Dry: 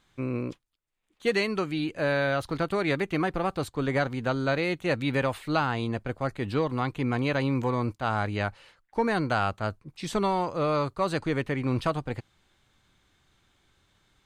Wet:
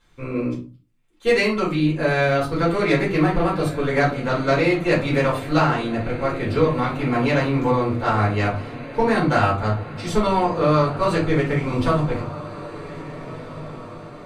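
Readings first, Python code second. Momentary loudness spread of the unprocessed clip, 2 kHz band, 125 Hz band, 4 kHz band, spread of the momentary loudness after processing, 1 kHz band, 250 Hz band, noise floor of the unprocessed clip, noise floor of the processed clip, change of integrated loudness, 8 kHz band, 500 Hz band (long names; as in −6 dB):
6 LU, +6.5 dB, +8.0 dB, +5.5 dB, 15 LU, +7.5 dB, +7.5 dB, −70 dBFS, −42 dBFS, +7.5 dB, +6.0 dB, +8.0 dB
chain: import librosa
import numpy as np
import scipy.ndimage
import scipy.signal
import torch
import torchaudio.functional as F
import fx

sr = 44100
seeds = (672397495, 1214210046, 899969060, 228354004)

y = fx.echo_diffused(x, sr, ms=1652, feedback_pct=52, wet_db=-14.0)
y = fx.cheby_harmonics(y, sr, harmonics=(3, 6), levels_db=(-20, -36), full_scale_db=-13.0)
y = fx.room_shoebox(y, sr, seeds[0], volume_m3=160.0, walls='furnished', distance_m=4.3)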